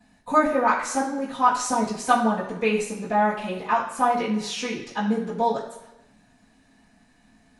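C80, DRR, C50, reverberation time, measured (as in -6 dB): 8.0 dB, -14.5 dB, 5.5 dB, 1.0 s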